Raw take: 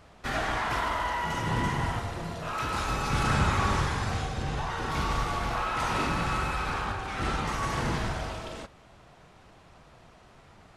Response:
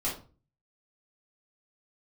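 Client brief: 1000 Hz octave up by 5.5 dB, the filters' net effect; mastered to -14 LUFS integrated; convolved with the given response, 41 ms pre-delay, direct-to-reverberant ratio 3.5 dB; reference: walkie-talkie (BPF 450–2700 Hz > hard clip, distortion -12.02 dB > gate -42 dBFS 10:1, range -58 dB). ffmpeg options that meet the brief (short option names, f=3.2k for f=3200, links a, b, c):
-filter_complex "[0:a]equalizer=f=1k:t=o:g=7,asplit=2[a][b];[1:a]atrim=start_sample=2205,adelay=41[c];[b][c]afir=irnorm=-1:irlink=0,volume=-9.5dB[d];[a][d]amix=inputs=2:normalize=0,highpass=450,lowpass=2.7k,asoftclip=type=hard:threshold=-22.5dB,agate=range=-58dB:threshold=-42dB:ratio=10,volume=13dB"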